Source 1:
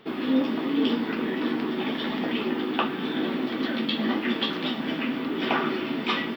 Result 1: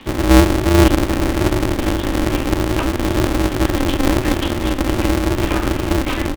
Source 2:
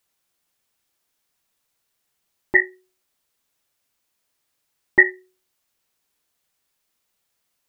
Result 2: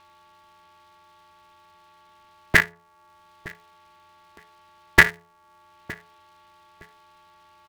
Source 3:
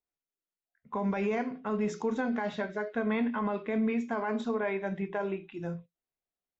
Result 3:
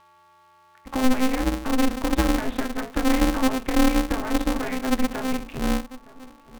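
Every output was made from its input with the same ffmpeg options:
ffmpeg -i in.wav -filter_complex "[0:a]acrossover=split=430|2500[link_01][link_02][link_03];[link_01]aecho=1:1:6.3:0.53[link_04];[link_03]acompressor=mode=upward:threshold=-44dB:ratio=2.5[link_05];[link_04][link_02][link_05]amix=inputs=3:normalize=0,afreqshift=-71,asplit=2[link_06][link_07];[link_07]adelay=914,lowpass=frequency=1200:poles=1,volume=-21.5dB,asplit=2[link_08][link_09];[link_09]adelay=914,lowpass=frequency=1200:poles=1,volume=0.25[link_10];[link_06][link_08][link_10]amix=inputs=3:normalize=0,aeval=exprs='val(0)+0.00126*sin(2*PI*1000*n/s)':channel_layout=same,asplit=2[link_11][link_12];[link_12]acompressor=threshold=-41dB:ratio=6,volume=-1dB[link_13];[link_11][link_13]amix=inputs=2:normalize=0,lowpass=frequency=3500:width=0.5412,lowpass=frequency=3500:width=1.3066,lowshelf=frequency=250:width_type=q:width=3:gain=8.5,aeval=exprs='val(0)*sgn(sin(2*PI*130*n/s))':channel_layout=same" out.wav

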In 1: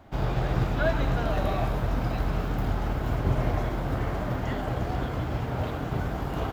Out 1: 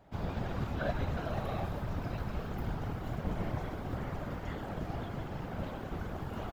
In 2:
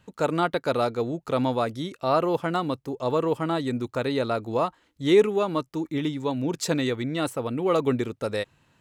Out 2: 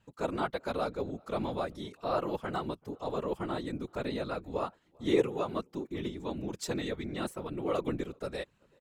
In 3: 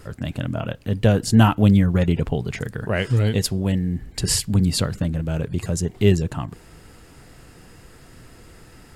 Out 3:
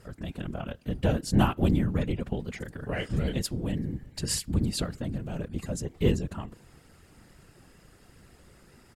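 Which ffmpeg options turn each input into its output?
ffmpeg -i in.wav -filter_complex "[0:a]aeval=exprs='0.891*(cos(1*acos(clip(val(0)/0.891,-1,1)))-cos(1*PI/2))+0.0891*(cos(3*acos(clip(val(0)/0.891,-1,1)))-cos(3*PI/2))':channel_layout=same,asplit=2[link_01][link_02];[link_02]adelay=384.8,volume=-30dB,highshelf=frequency=4000:gain=-8.66[link_03];[link_01][link_03]amix=inputs=2:normalize=0,afftfilt=real='hypot(re,im)*cos(2*PI*random(0))':imag='hypot(re,im)*sin(2*PI*random(1))':win_size=512:overlap=0.75" out.wav

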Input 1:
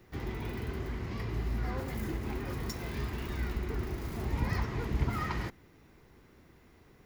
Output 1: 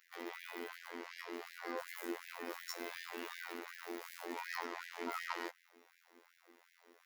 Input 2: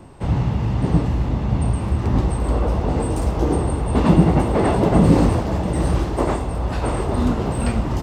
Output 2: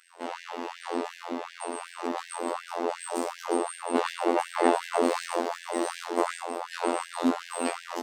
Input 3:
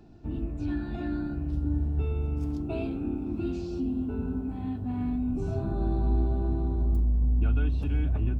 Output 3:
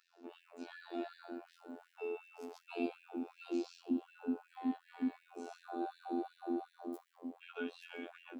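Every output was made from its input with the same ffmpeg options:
ffmpeg -i in.wav -af "afftfilt=real='hypot(re,im)*cos(PI*b)':imag='0':win_size=2048:overlap=0.75,afftfilt=real='re*gte(b*sr/1024,230*pow(1600/230,0.5+0.5*sin(2*PI*2.7*pts/sr)))':imag='im*gte(b*sr/1024,230*pow(1600/230,0.5+0.5*sin(2*PI*2.7*pts/sr)))':win_size=1024:overlap=0.75,volume=1.5dB" out.wav

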